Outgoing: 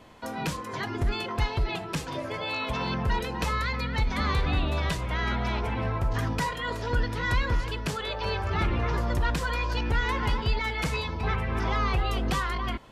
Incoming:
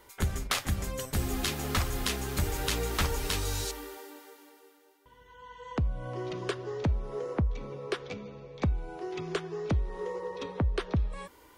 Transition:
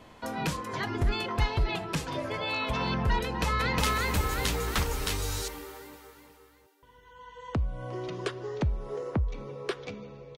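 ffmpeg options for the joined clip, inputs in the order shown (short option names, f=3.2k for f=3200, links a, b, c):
-filter_complex "[0:a]apad=whole_dur=10.37,atrim=end=10.37,atrim=end=3.782[a];[1:a]atrim=start=2.008:end=8.6[b];[a][b]acrossfade=d=0.004:c1=hsin:c2=hsin,asplit=2[c][d];[d]afade=t=in:st=3.23:d=0.01,afade=t=out:st=3.78:d=0.01,aecho=0:1:360|720|1080|1440|1800|2160|2520|2880:1|0.55|0.3025|0.166375|0.0915063|0.0503284|0.0276806|0.0152244[e];[c][e]amix=inputs=2:normalize=0"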